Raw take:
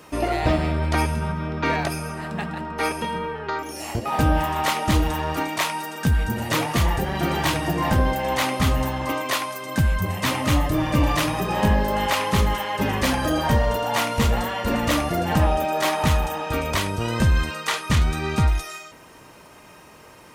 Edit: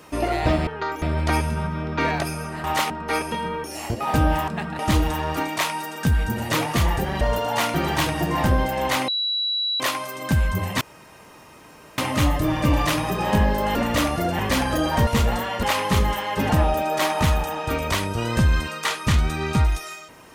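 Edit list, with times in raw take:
0:02.29–0:02.60: swap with 0:04.53–0:04.79
0:03.34–0:03.69: move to 0:00.67
0:08.55–0:09.27: beep over 3,920 Hz −21 dBFS
0:10.28: splice in room tone 1.17 s
0:12.05–0:12.91: swap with 0:14.68–0:15.32
0:13.59–0:14.12: move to 0:07.21

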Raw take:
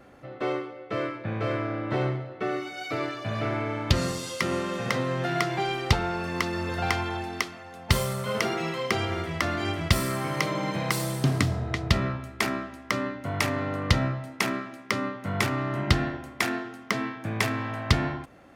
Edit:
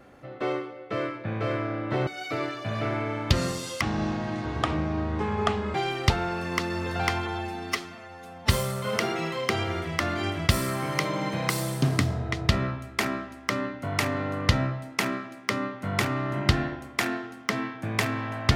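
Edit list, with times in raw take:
0:02.07–0:02.67: remove
0:04.41–0:05.57: play speed 60%
0:07.09–0:07.91: time-stretch 1.5×

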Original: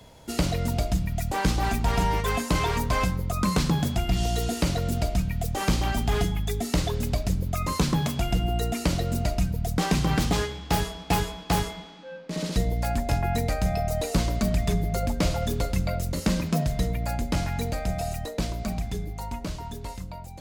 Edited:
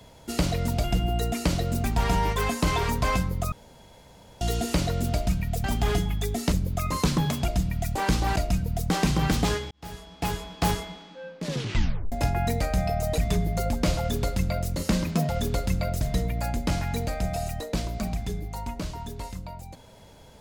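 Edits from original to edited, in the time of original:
0:00.84–0:01.72: swap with 0:08.24–0:09.24
0:03.40–0:04.29: fill with room tone
0:05.52–0:05.90: remove
0:06.78–0:07.28: remove
0:10.59–0:11.54: fade in
0:12.32: tape stop 0.68 s
0:14.06–0:14.55: remove
0:15.35–0:16.07: duplicate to 0:16.66

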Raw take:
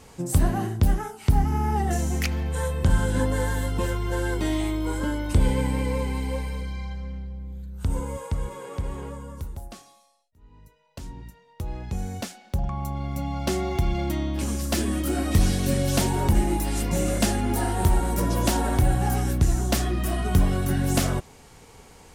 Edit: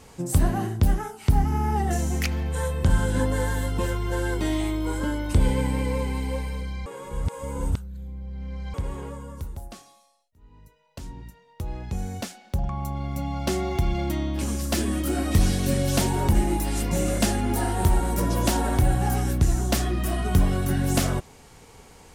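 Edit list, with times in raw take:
0:06.86–0:08.74: reverse

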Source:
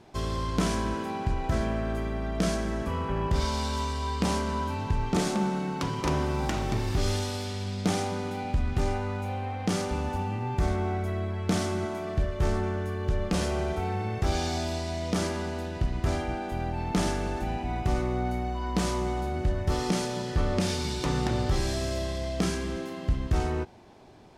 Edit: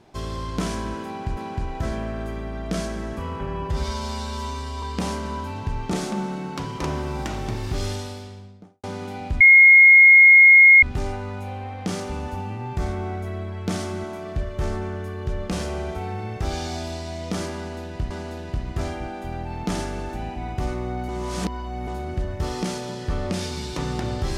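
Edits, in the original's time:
0:01.06–0:01.37: repeat, 2 plays
0:03.15–0:04.06: time-stretch 1.5×
0:07.09–0:08.07: fade out and dull
0:08.64: insert tone 2,150 Hz −7 dBFS 1.42 s
0:15.38–0:15.92: repeat, 2 plays
0:18.36–0:19.15: reverse

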